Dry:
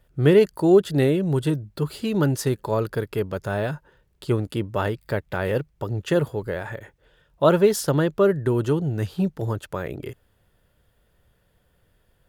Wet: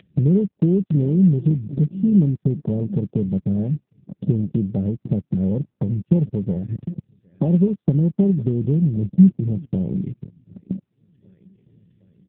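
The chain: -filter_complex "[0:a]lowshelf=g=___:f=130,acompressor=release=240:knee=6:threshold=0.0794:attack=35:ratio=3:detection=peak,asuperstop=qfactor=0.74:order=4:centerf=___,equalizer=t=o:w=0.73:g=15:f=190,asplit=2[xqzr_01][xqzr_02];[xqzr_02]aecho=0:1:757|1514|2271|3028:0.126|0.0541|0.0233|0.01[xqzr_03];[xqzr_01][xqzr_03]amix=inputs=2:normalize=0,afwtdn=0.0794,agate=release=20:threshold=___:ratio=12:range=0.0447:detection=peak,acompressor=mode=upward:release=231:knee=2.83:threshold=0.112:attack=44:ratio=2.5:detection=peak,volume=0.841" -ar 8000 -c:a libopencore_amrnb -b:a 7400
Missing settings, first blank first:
9, 990, 0.0158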